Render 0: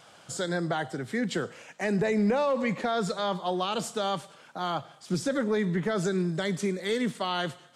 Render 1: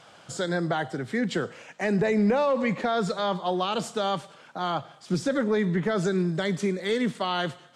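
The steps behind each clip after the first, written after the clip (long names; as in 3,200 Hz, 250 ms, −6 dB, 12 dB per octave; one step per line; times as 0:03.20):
high-shelf EQ 9,100 Hz −11.5 dB
level +2.5 dB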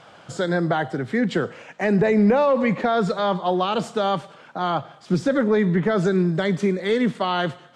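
high-shelf EQ 4,400 Hz −11 dB
level +5.5 dB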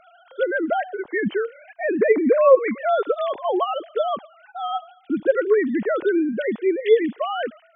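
three sine waves on the formant tracks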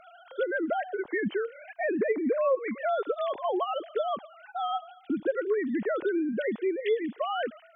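downward compressor 2.5 to 1, threshold −29 dBFS, peak gain reduction 14 dB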